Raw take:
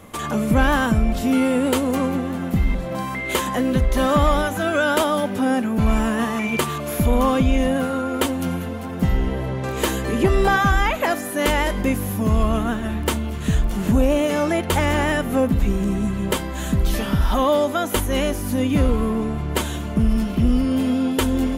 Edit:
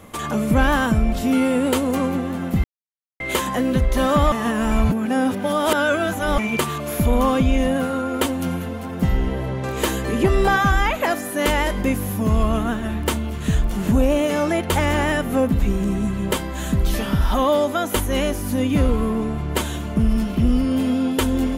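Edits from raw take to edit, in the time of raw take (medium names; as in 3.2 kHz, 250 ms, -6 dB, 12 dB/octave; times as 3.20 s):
2.64–3.20 s: mute
4.32–6.38 s: reverse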